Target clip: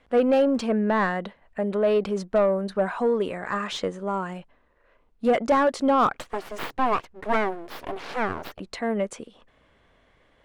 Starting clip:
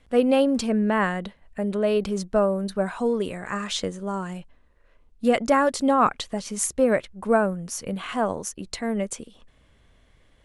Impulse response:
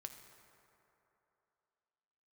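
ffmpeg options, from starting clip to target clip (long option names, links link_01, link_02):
-filter_complex "[0:a]asplit=3[link_01][link_02][link_03];[link_01]afade=type=out:start_time=6.13:duration=0.02[link_04];[link_02]aeval=exprs='abs(val(0))':channel_layout=same,afade=type=in:start_time=6.13:duration=0.02,afade=type=out:start_time=8.59:duration=0.02[link_05];[link_03]afade=type=in:start_time=8.59:duration=0.02[link_06];[link_04][link_05][link_06]amix=inputs=3:normalize=0,asplit=2[link_07][link_08];[link_08]highpass=frequency=720:poles=1,volume=16dB,asoftclip=type=tanh:threshold=-7dB[link_09];[link_07][link_09]amix=inputs=2:normalize=0,lowpass=frequency=1100:poles=1,volume=-6dB,asoftclip=type=hard:threshold=-10.5dB,volume=-2.5dB"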